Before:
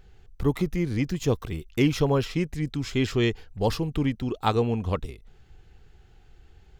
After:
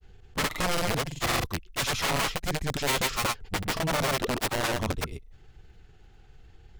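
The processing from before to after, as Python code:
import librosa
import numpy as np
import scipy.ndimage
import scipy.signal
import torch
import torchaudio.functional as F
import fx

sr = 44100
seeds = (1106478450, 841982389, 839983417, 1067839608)

y = (np.mod(10.0 ** (22.0 / 20.0) * x + 1.0, 2.0) - 1.0) / 10.0 ** (22.0 / 20.0)
y = fx.granulator(y, sr, seeds[0], grain_ms=100.0, per_s=20.0, spray_ms=100.0, spread_st=0)
y = y * librosa.db_to_amplitude(2.0)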